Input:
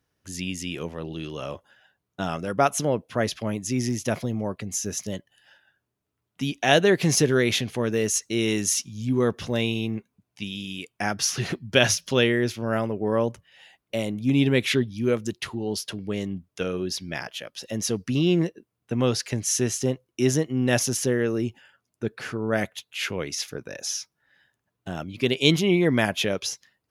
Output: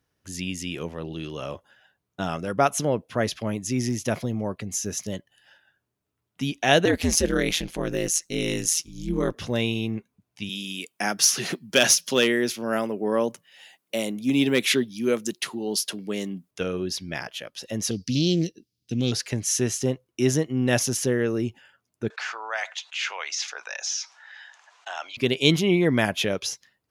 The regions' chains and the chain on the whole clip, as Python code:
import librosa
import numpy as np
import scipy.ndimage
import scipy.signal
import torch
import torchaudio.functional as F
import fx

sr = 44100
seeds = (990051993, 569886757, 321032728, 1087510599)

y = fx.chain(x, sr, fx.high_shelf(hz=4400.0, db=5.0),
    fx.ring_mod(carrier_hz=82.0), at=(6.85, 9.36))
y = fx.chain(y, sr, fx.high_shelf(hz=4900.0, db=10.0),
    fx.clip_hard(threshold_db=-9.5),
    fx.highpass(hz=170.0, slope=24), at=(10.49, 16.51))
y = fx.chain(y, sr, fx.curve_eq(hz=(300.0, 1000.0, 5000.0, 7800.0), db=(0, -24, 15, 1)),
    fx.doppler_dist(depth_ms=0.12), at=(17.91, 19.12))
y = fx.chain(y, sr, fx.ellip_bandpass(low_hz=800.0, high_hz=6800.0, order=3, stop_db=60),
    fx.env_flatten(amount_pct=50), at=(22.1, 25.17))